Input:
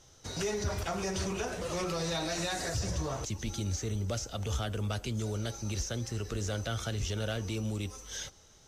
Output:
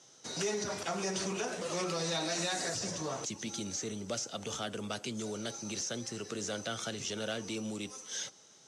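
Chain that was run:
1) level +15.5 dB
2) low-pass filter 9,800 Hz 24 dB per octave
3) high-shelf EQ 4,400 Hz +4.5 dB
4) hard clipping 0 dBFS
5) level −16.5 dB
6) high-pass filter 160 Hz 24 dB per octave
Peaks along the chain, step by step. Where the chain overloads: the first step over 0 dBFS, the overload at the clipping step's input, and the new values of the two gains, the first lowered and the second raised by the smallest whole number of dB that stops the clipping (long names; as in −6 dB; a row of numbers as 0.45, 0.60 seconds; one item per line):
−7.0, −7.0, −6.0, −6.0, −22.5, −22.0 dBFS
no step passes full scale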